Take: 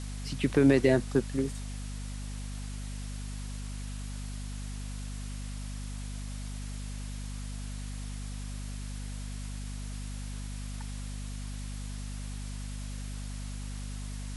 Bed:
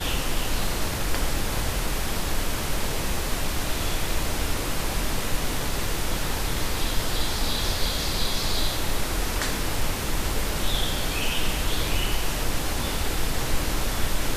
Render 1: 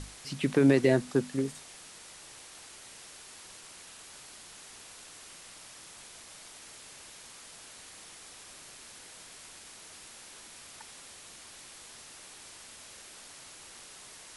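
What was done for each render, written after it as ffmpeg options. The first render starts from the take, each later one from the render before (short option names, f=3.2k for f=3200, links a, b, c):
-af "bandreject=f=50:t=h:w=6,bandreject=f=100:t=h:w=6,bandreject=f=150:t=h:w=6,bandreject=f=200:t=h:w=6,bandreject=f=250:t=h:w=6"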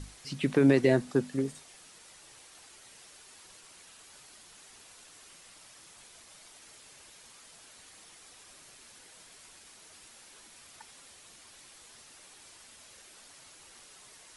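-af "afftdn=nr=6:nf=-50"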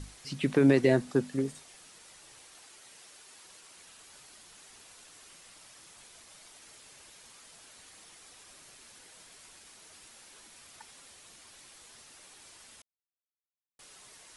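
-filter_complex "[0:a]asettb=1/sr,asplit=3[a][b][c];[a]atrim=end=2.564[d];[b]atrim=start=2.56:end=3.78,asetpts=PTS-STARTPTS,afade=t=in:d=0.004:c=qsin,afade=t=out:st=1.216:d=0.004:c=qsin,lowshelf=f=120:g=-9[e];[c]atrim=start=3.776[f];[d][e]acrossfade=d=0.004:c1=hsin:c2=qsin[g];[g][f]acrossfade=d=0.004:c1=qsin:c2=hsin,asplit=3[h][i][j];[h]atrim=end=12.82,asetpts=PTS-STARTPTS,afade=t=out:st=12.816:d=0.004:c=hsin[k];[i]atrim=start=12.82:end=13.79,asetpts=PTS-STARTPTS,volume=0[l];[j]atrim=start=13.79,asetpts=PTS-STARTPTS,afade=t=in:d=0.004:c=hsin[m];[k][l][m]concat=n=3:v=0:a=1"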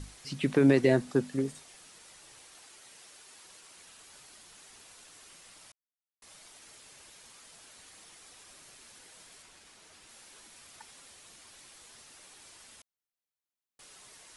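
-filter_complex "[0:a]asettb=1/sr,asplit=3[a][b][c];[a]atrim=end=9.424[d];[b]atrim=start=9.42:end=10.09,asetpts=PTS-STARTPTS,afade=t=in:d=0.004:c=qsin,afade=t=out:st=0.666:d=0.004:c=qsin,highshelf=f=6.9k:g=-7[e];[c]atrim=start=10.086[f];[d][e]acrossfade=d=0.004:c1=hsin:c2=qsin[g];[g][f]acrossfade=d=0.004:c1=qsin:c2=hsin,asplit=3[h][i][j];[h]atrim=end=5.72,asetpts=PTS-STARTPTS,afade=t=out:st=5.716:d=0.004:c=hsin[k];[i]atrim=start=5.72:end=6.22,asetpts=PTS-STARTPTS,volume=0[l];[j]atrim=start=6.22,asetpts=PTS-STARTPTS,afade=t=in:d=0.004:c=hsin[m];[k][l][m]concat=n=3:v=0:a=1"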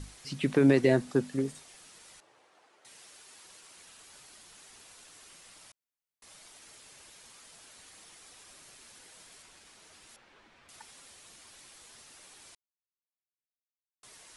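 -filter_complex "[0:a]asettb=1/sr,asplit=3[a][b][c];[a]atrim=end=2.204[d];[b]atrim=start=2.2:end=2.85,asetpts=PTS-STARTPTS,afade=t=in:d=0.004:c=qsin,afade=t=out:st=0.646:d=0.004:c=qsin,bandpass=f=630:t=q:w=0.77[e];[c]atrim=start=2.846[f];[d][e]acrossfade=d=0.004:c1=hsin:c2=qsin[g];[g][f]acrossfade=d=0.004:c1=qsin:c2=hsin,asettb=1/sr,asplit=3[h][i][j];[h]atrim=end=10.164[k];[i]atrim=start=10.16:end=10.69,asetpts=PTS-STARTPTS,afade=t=in:d=0.004:c=qsin,afade=t=out:st=0.526:d=0.004:c=qsin,lowpass=2.4k[l];[j]atrim=start=10.686[m];[k][l]acrossfade=d=0.004:c1=hsin:c2=qsin[n];[n][m]acrossfade=d=0.004:c1=qsin:c2=hsin,asplit=3[o][p][q];[o]atrim=end=12.55,asetpts=PTS-STARTPTS,afade=t=out:st=12.546:d=0.004:c=hsin[r];[p]atrim=start=12.55:end=14.03,asetpts=PTS-STARTPTS,volume=0[s];[q]atrim=start=14.03,asetpts=PTS-STARTPTS,afade=t=in:d=0.004:c=hsin[t];[r][s][t]concat=n=3:v=0:a=1"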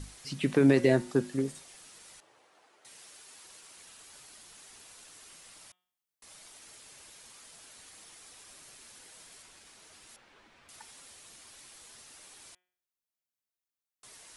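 -af "highshelf=f=8.2k:g=3.5,bandreject=f=181:t=h:w=4,bandreject=f=362:t=h:w=4,bandreject=f=543:t=h:w=4,bandreject=f=724:t=h:w=4,bandreject=f=905:t=h:w=4,bandreject=f=1.086k:t=h:w=4,bandreject=f=1.267k:t=h:w=4,bandreject=f=1.448k:t=h:w=4,bandreject=f=1.629k:t=h:w=4,bandreject=f=1.81k:t=h:w=4,bandreject=f=1.991k:t=h:w=4,bandreject=f=2.172k:t=h:w=4,bandreject=f=2.353k:t=h:w=4,bandreject=f=2.534k:t=h:w=4,bandreject=f=2.715k:t=h:w=4,bandreject=f=2.896k:t=h:w=4,bandreject=f=3.077k:t=h:w=4,bandreject=f=3.258k:t=h:w=4,bandreject=f=3.439k:t=h:w=4,bandreject=f=3.62k:t=h:w=4"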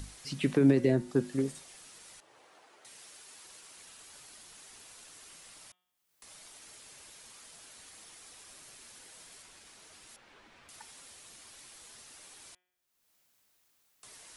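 -filter_complex "[0:a]acrossover=split=420[a][b];[b]alimiter=level_in=2.5dB:limit=-24dB:level=0:latency=1:release=459,volume=-2.5dB[c];[a][c]amix=inputs=2:normalize=0,acompressor=mode=upward:threshold=-53dB:ratio=2.5"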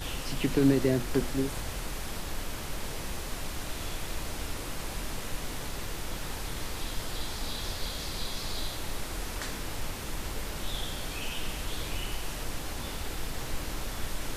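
-filter_complex "[1:a]volume=-9.5dB[a];[0:a][a]amix=inputs=2:normalize=0"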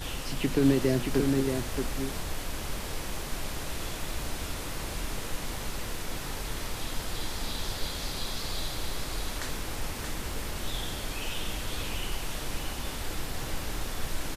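-af "aecho=1:1:626:0.562"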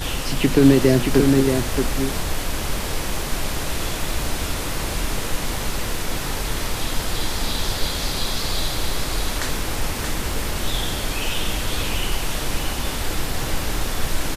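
-af "volume=10dB,alimiter=limit=-2dB:level=0:latency=1"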